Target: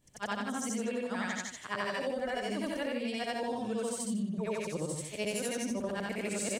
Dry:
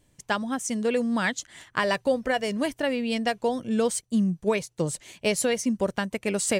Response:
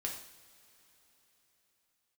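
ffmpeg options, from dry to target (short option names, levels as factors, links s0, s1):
-af "afftfilt=real='re':imag='-im':win_size=8192:overlap=0.75,aecho=1:1:64.14|151.6:0.501|0.282,acompressor=threshold=0.0282:ratio=6"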